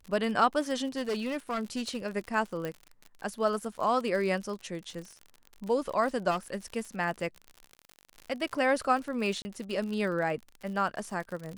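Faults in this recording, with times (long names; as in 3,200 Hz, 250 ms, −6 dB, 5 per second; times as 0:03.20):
surface crackle 59 per second −36 dBFS
0:00.97–0:01.97: clipping −27 dBFS
0:02.65: click −21 dBFS
0:06.30–0:06.56: clipping −26 dBFS
0:09.42–0:09.45: drop-out 30 ms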